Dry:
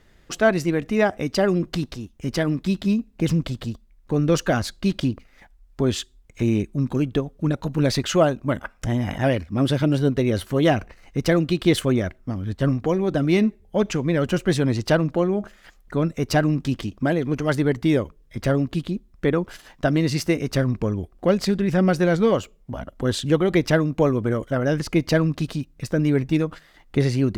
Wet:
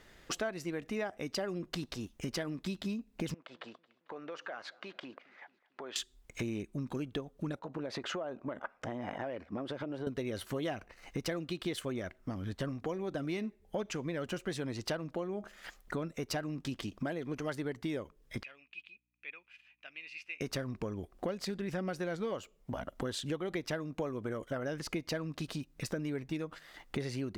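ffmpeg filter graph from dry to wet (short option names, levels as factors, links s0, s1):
-filter_complex "[0:a]asettb=1/sr,asplit=3[s0][s1][s2];[s0]atrim=end=3.344[s3];[s1]atrim=start=3.34:end=5.96,asetpts=PTS-STARTPTS,afade=t=in:d=0.004:c=qsin,afade=t=out:st=2.616:d=0.004:c=qsin,highpass=630,lowpass=2100,acompressor=threshold=0.00794:ratio=4:attack=3.2:release=140:knee=1:detection=peak,aecho=1:1:223|446|669|892:0.0708|0.0404|0.023|0.0131,atrim=end_sample=115542[s4];[s2]atrim=start=5.956[s5];[s3][s4]acrossfade=d=0.004:c1=hsin:c2=qsin[s6];[s6][s5]acrossfade=d=0.004:c1=qsin:c2=hsin,asettb=1/sr,asplit=3[s7][s8][s9];[s7]atrim=end=7.594[s10];[s8]atrim=start=7.59:end=10.07,asetpts=PTS-STARTPTS,afade=t=in:d=0.004:c=qsin,afade=t=out:st=2.476:d=0.004:c=qsin,bandpass=f=630:t=q:w=0.65,acompressor=threshold=0.0447:ratio=6:attack=3.2:release=140:knee=1:detection=peak[s11];[s9]atrim=start=10.066[s12];[s10][s11]acrossfade=d=0.004:c1=hsin:c2=qsin[s13];[s13][s12]acrossfade=d=0.004:c1=qsin:c2=hsin,asettb=1/sr,asplit=3[s14][s15][s16];[s14]atrim=end=18.434[s17];[s15]atrim=start=18.43:end=20.41,asetpts=PTS-STARTPTS,afade=t=in:d=0.004:c=qsin,afade=t=out:st=1.976:d=0.004:c=qsin,bandpass=f=2500:t=q:w=18,aeval=exprs='val(0)+0.0001*(sin(2*PI*60*n/s)+sin(2*PI*2*60*n/s)/2+sin(2*PI*3*60*n/s)/3+sin(2*PI*4*60*n/s)/4+sin(2*PI*5*60*n/s)/5)':c=same[s18];[s16]atrim=start=20.406[s19];[s17][s18]acrossfade=d=0.004:c1=hsin:c2=qsin[s20];[s20][s19]acrossfade=d=0.004:c1=qsin:c2=hsin,lowshelf=f=240:g=-9.5,acompressor=threshold=0.0141:ratio=5,volume=1.19"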